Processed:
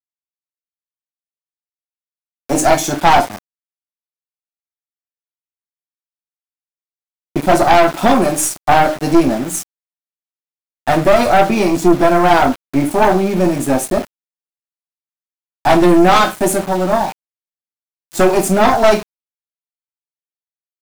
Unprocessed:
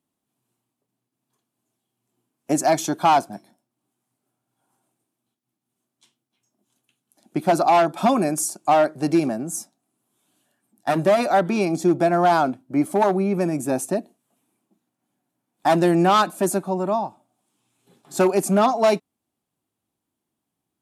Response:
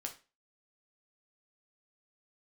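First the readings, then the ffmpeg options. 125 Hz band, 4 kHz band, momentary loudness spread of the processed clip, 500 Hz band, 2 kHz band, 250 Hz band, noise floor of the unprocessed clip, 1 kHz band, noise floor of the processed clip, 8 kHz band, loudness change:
+6.0 dB, +9.0 dB, 9 LU, +6.5 dB, +10.5 dB, +7.0 dB, -82 dBFS, +7.0 dB, under -85 dBFS, +8.0 dB, +7.0 dB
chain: -filter_complex "[1:a]atrim=start_sample=2205,asetrate=48510,aresample=44100[a];[0:a][a]afir=irnorm=-1:irlink=0,aeval=exprs='val(0)*gte(abs(val(0)),0.0168)':c=same,aeval=exprs='0.473*(cos(1*acos(clip(val(0)/0.473,-1,1)))-cos(1*PI/2))+0.0841*(cos(5*acos(clip(val(0)/0.473,-1,1)))-cos(5*PI/2))+0.0841*(cos(6*acos(clip(val(0)/0.473,-1,1)))-cos(6*PI/2))':c=same,volume=5.5dB"

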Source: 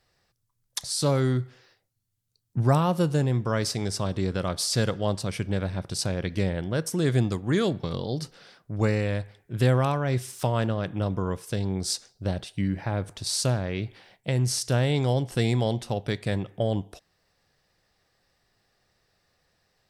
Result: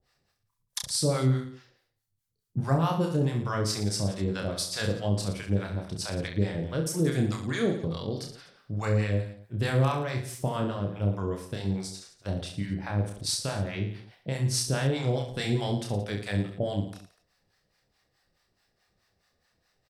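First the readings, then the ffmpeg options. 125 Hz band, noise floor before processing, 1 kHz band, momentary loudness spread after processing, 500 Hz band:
-2.5 dB, -75 dBFS, -3.0 dB, 9 LU, -3.5 dB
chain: -filter_complex "[0:a]acrossover=split=660[a][b];[a]aeval=exprs='val(0)*(1-1/2+1/2*cos(2*PI*4.7*n/s))':c=same[c];[b]aeval=exprs='val(0)*(1-1/2-1/2*cos(2*PI*4.7*n/s))':c=same[d];[c][d]amix=inputs=2:normalize=0,aecho=1:1:30|67.5|114.4|173|246.2:0.631|0.398|0.251|0.158|0.1"

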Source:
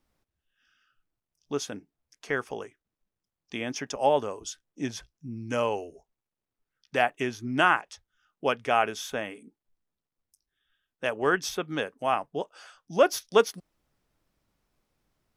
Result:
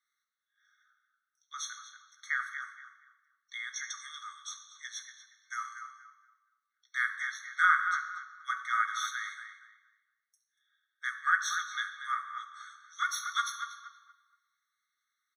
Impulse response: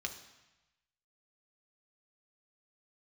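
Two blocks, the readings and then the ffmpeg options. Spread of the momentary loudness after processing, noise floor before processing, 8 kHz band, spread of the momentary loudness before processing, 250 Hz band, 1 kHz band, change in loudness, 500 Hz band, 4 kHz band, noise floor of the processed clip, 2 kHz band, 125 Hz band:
20 LU, under -85 dBFS, -1.0 dB, 16 LU, under -40 dB, -4.5 dB, -5.0 dB, under -40 dB, -4.0 dB, -85 dBFS, +0.5 dB, under -40 dB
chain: -filter_complex "[0:a]asplit=2[a][b];[b]adelay=236,lowpass=f=2.2k:p=1,volume=-7dB,asplit=2[c][d];[d]adelay=236,lowpass=f=2.2k:p=1,volume=0.31,asplit=2[e][f];[f]adelay=236,lowpass=f=2.2k:p=1,volume=0.31,asplit=2[g][h];[h]adelay=236,lowpass=f=2.2k:p=1,volume=0.31[i];[a][c][e][g][i]amix=inputs=5:normalize=0[j];[1:a]atrim=start_sample=2205[k];[j][k]afir=irnorm=-1:irlink=0,afftfilt=real='re*eq(mod(floor(b*sr/1024/1100),2),1)':imag='im*eq(mod(floor(b*sr/1024/1100),2),1)':win_size=1024:overlap=0.75"

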